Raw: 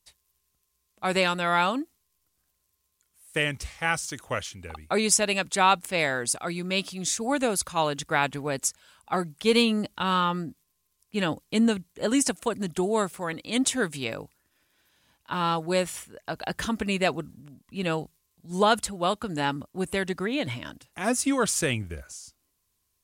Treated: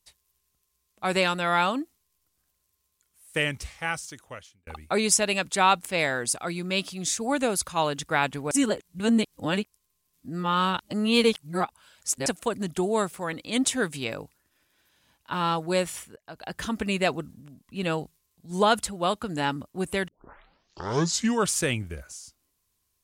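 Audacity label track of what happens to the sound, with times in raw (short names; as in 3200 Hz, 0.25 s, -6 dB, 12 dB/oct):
3.490000	4.670000	fade out
8.510000	12.260000	reverse
16.160000	16.820000	fade in, from -19 dB
20.080000	20.080000	tape start 1.44 s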